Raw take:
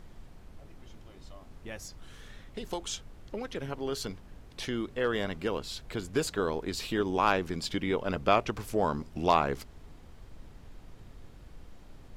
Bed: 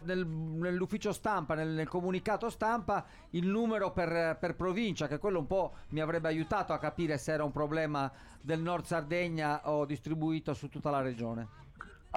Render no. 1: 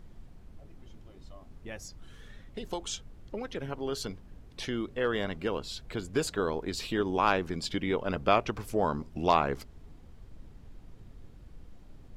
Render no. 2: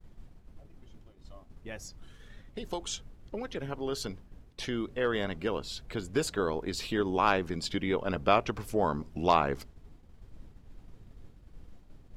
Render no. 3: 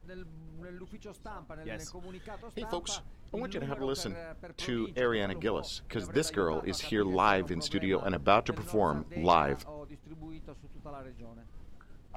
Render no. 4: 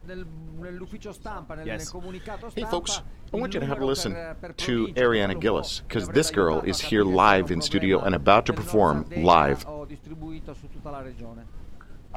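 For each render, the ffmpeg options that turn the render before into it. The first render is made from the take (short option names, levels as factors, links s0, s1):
-af "afftdn=nr=6:nf=-52"
-af "agate=range=0.0224:threshold=0.00631:ratio=3:detection=peak"
-filter_complex "[1:a]volume=0.211[s0];[0:a][s0]amix=inputs=2:normalize=0"
-af "volume=2.66,alimiter=limit=0.708:level=0:latency=1"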